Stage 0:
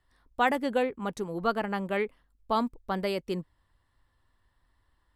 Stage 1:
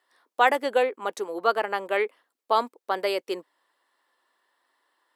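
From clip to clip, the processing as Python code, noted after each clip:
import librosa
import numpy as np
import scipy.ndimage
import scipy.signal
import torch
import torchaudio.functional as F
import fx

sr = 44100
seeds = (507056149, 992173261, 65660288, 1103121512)

y = scipy.signal.sosfilt(scipy.signal.butter(4, 370.0, 'highpass', fs=sr, output='sos'), x)
y = y * 10.0 ** (5.5 / 20.0)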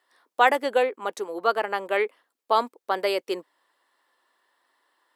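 y = fx.rider(x, sr, range_db=4, speed_s=2.0)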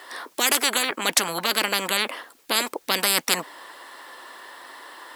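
y = fx.spectral_comp(x, sr, ratio=10.0)
y = y * 10.0 ** (3.5 / 20.0)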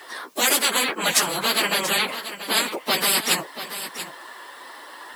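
y = fx.phase_scramble(x, sr, seeds[0], window_ms=50)
y = y + 10.0 ** (-12.0 / 20.0) * np.pad(y, (int(684 * sr / 1000.0), 0))[:len(y)]
y = y * 10.0 ** (1.5 / 20.0)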